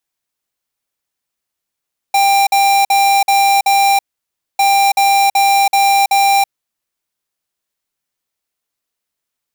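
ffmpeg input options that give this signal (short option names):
-f lavfi -i "aevalsrc='0.282*(2*lt(mod(793*t,1),0.5)-1)*clip(min(mod(mod(t,2.45),0.38),0.33-mod(mod(t,2.45),0.38))/0.005,0,1)*lt(mod(t,2.45),1.9)':d=4.9:s=44100"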